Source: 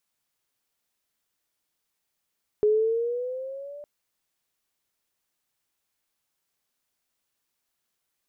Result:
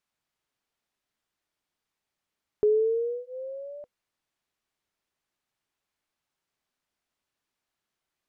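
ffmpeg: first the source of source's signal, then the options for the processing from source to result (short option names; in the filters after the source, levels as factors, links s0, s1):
-f lavfi -i "aevalsrc='pow(10,(-16.5-22*t/1.21)/20)*sin(2*PI*418*1.21/(6*log(2)/12)*(exp(6*log(2)/12*t/1.21)-1))':d=1.21:s=44100"
-af "aemphasis=mode=reproduction:type=50kf,bandreject=f=500:w=15"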